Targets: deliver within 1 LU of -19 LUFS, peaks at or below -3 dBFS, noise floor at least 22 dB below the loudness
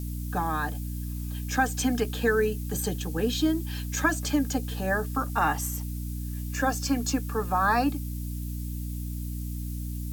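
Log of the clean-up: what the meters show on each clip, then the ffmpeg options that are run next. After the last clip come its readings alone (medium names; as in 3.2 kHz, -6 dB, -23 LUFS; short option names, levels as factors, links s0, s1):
hum 60 Hz; highest harmonic 300 Hz; hum level -31 dBFS; noise floor -34 dBFS; noise floor target -51 dBFS; loudness -28.5 LUFS; peak level -11.0 dBFS; loudness target -19.0 LUFS
-> -af "bandreject=f=60:t=h:w=6,bandreject=f=120:t=h:w=6,bandreject=f=180:t=h:w=6,bandreject=f=240:t=h:w=6,bandreject=f=300:t=h:w=6"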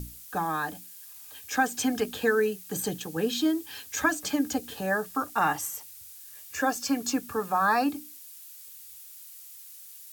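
hum not found; noise floor -47 dBFS; noise floor target -51 dBFS
-> -af "afftdn=nr=6:nf=-47"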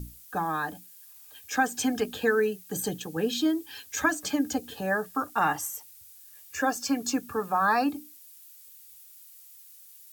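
noise floor -51 dBFS; loudness -28.5 LUFS; peak level -10.5 dBFS; loudness target -19.0 LUFS
-> -af "volume=2.99,alimiter=limit=0.708:level=0:latency=1"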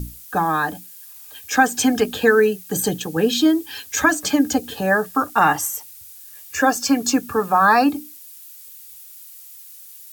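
loudness -19.0 LUFS; peak level -3.0 dBFS; noise floor -42 dBFS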